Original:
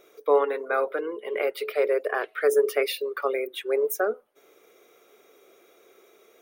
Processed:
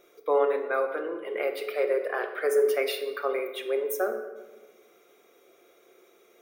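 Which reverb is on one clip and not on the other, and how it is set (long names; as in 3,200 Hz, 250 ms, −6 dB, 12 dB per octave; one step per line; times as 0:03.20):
rectangular room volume 900 cubic metres, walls mixed, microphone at 0.87 metres
level −3.5 dB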